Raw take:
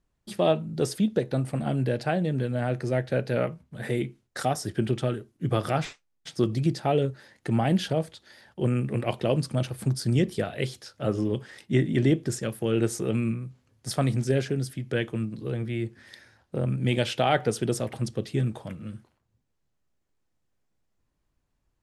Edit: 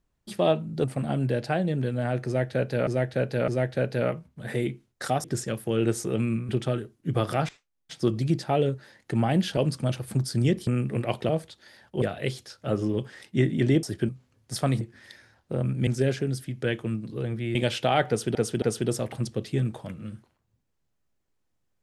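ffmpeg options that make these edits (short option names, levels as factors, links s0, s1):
-filter_complex "[0:a]asplit=18[s0][s1][s2][s3][s4][s5][s6][s7][s8][s9][s10][s11][s12][s13][s14][s15][s16][s17];[s0]atrim=end=0.842[s18];[s1]atrim=start=1.408:end=3.442[s19];[s2]atrim=start=2.828:end=3.442[s20];[s3]atrim=start=2.828:end=4.592[s21];[s4]atrim=start=12.188:end=13.442[s22];[s5]atrim=start=4.848:end=5.85,asetpts=PTS-STARTPTS,afade=t=out:st=0.998:d=0.004:c=hsin:silence=0.149624[s23];[s6]atrim=start=5.85:end=7.932,asetpts=PTS-STARTPTS,afade=t=in:d=0.48:silence=0.149624[s24];[s7]atrim=start=9.278:end=10.382[s25];[s8]atrim=start=8.658:end=9.282[s26];[s9]atrim=start=7.928:end=8.662[s27];[s10]atrim=start=10.378:end=12.192[s28];[s11]atrim=start=4.588:end=4.852[s29];[s12]atrim=start=13.438:end=14.162[s30];[s13]atrim=start=15.838:end=16.902[s31];[s14]atrim=start=14.158:end=15.842[s32];[s15]atrim=start=16.898:end=17.702[s33];[s16]atrim=start=17.428:end=17.702[s34];[s17]atrim=start=17.428[s35];[s18][s19]acrossfade=d=0.004:c1=hsin:c2=hsin[s36];[s36][s20]acrossfade=d=0.004:c1=hsin:c2=hsin[s37];[s37][s21]acrossfade=d=0.004:c1=hsin:c2=hsin[s38];[s38][s22]acrossfade=d=0.004:c1=hsin:c2=hsin[s39];[s23][s24]concat=n=2:v=0:a=1[s40];[s39][s40]acrossfade=d=0.004:c1=hsin:c2=hsin[s41];[s41][s25]acrossfade=d=0.004:c1=hsin:c2=hsin[s42];[s42][s26]acrossfade=d=0.004:c1=hsin:c2=hsin[s43];[s43][s27]acrossfade=d=0.004:c1=hsin:c2=hsin[s44];[s44][s28]acrossfade=d=0.004:c1=hsin:c2=hsin[s45];[s45][s29]acrossfade=d=0.004:c1=hsin:c2=hsin[s46];[s46][s30]acrossfade=d=0.004:c1=hsin:c2=hsin[s47];[s47][s31]acrossfade=d=0.004:c1=hsin:c2=hsin[s48];[s48][s32]acrossfade=d=0.004:c1=hsin:c2=hsin[s49];[s49][s33]acrossfade=d=0.004:c1=hsin:c2=hsin[s50];[s50][s34]acrossfade=d=0.004:c1=hsin:c2=hsin[s51];[s51][s35]acrossfade=d=0.004:c1=hsin:c2=hsin"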